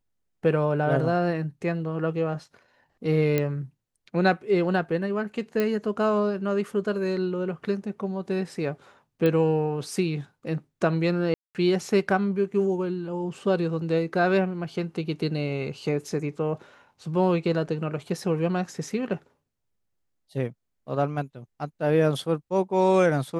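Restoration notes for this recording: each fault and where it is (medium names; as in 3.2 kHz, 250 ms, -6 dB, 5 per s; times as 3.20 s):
3.38 s: pop -11 dBFS
5.60 s: pop -13 dBFS
9.26 s: pop -14 dBFS
11.34–11.55 s: dropout 208 ms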